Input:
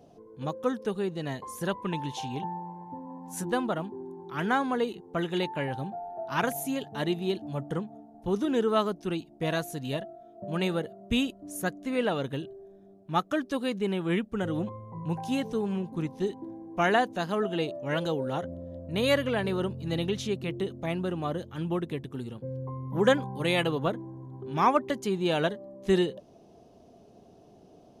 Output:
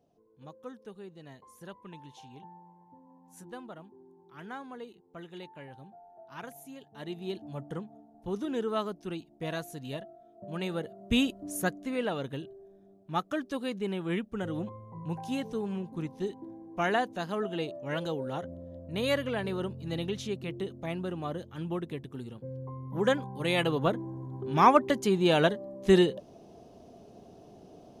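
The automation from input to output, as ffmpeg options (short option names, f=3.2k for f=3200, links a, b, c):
-af "volume=10dB,afade=t=in:st=6.91:d=0.46:silence=0.334965,afade=t=in:st=10.67:d=0.76:silence=0.354813,afade=t=out:st=11.43:d=0.55:silence=0.446684,afade=t=in:st=23.34:d=0.79:silence=0.446684"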